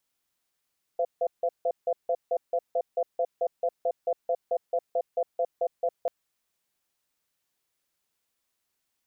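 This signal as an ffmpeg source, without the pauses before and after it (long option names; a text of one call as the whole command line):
ffmpeg -f lavfi -i "aevalsrc='0.0531*(sin(2*PI*512*t)+sin(2*PI*683*t))*clip(min(mod(t,0.22),0.06-mod(t,0.22))/0.005,0,1)':duration=5.09:sample_rate=44100" out.wav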